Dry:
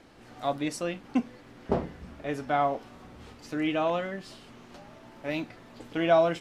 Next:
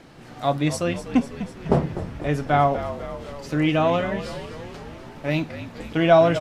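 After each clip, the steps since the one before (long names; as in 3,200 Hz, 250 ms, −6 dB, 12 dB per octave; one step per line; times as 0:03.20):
parametric band 150 Hz +12 dB 0.29 octaves
on a send: echo with shifted repeats 249 ms, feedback 64%, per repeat −49 Hz, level −12 dB
on the sum: level +6.5 dB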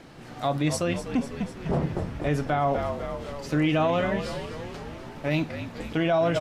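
brickwall limiter −15.5 dBFS, peak gain reduction 11.5 dB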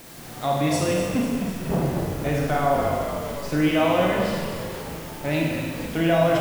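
bit-depth reduction 8 bits, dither triangular
four-comb reverb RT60 1.4 s, combs from 33 ms, DRR −1.5 dB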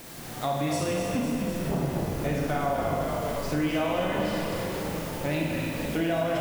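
downward compressor 2.5 to 1, threshold −27 dBFS, peak gain reduction 9 dB
on a send: echo with a time of its own for lows and highs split 620 Hz, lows 607 ms, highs 259 ms, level −8.5 dB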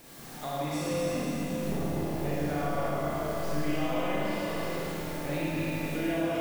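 four-comb reverb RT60 2 s, combs from 27 ms, DRR −4.5 dB
level −9 dB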